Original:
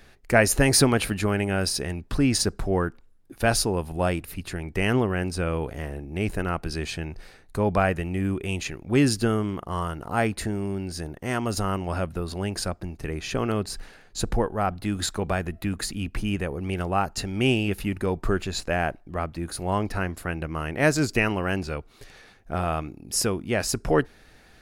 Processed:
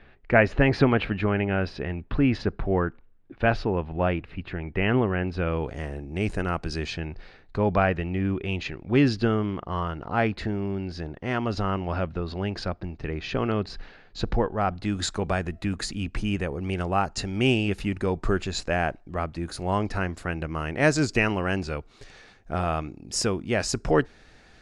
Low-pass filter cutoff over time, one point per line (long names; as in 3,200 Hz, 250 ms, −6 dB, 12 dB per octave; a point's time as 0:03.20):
low-pass filter 24 dB per octave
0:05.25 3,100 Hz
0:05.80 7,900 Hz
0:06.68 7,900 Hz
0:07.08 4,500 Hz
0:14.19 4,500 Hz
0:15.10 8,000 Hz